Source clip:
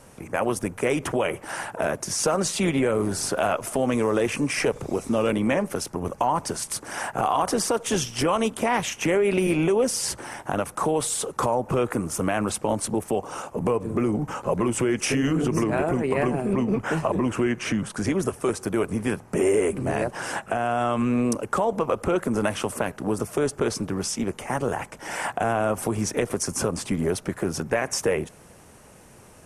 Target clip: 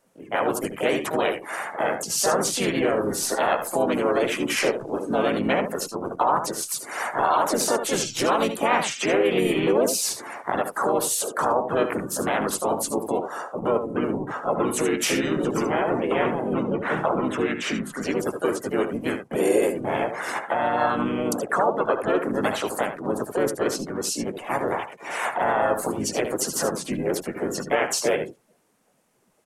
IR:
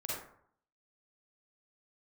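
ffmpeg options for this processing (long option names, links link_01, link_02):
-filter_complex "[0:a]equalizer=frequency=64:width_type=o:width=1.5:gain=-11.5,aecho=1:1:76:0.422,afftdn=noise_reduction=19:noise_floor=-37,asplit=4[link_01][link_02][link_03][link_04];[link_02]asetrate=22050,aresample=44100,atempo=2,volume=-16dB[link_05];[link_03]asetrate=35002,aresample=44100,atempo=1.25992,volume=-6dB[link_06];[link_04]asetrate=55563,aresample=44100,atempo=0.793701,volume=-3dB[link_07];[link_01][link_05][link_06][link_07]amix=inputs=4:normalize=0,lowshelf=frequency=190:gain=-10"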